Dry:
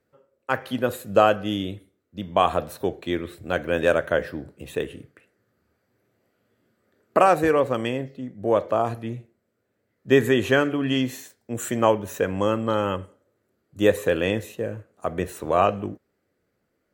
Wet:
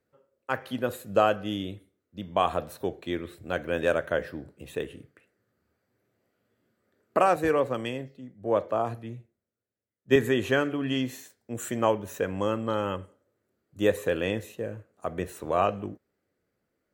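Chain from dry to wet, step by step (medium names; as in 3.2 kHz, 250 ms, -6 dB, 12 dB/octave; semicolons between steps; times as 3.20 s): 7.36–10.16 s: three bands expanded up and down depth 40%; trim -5 dB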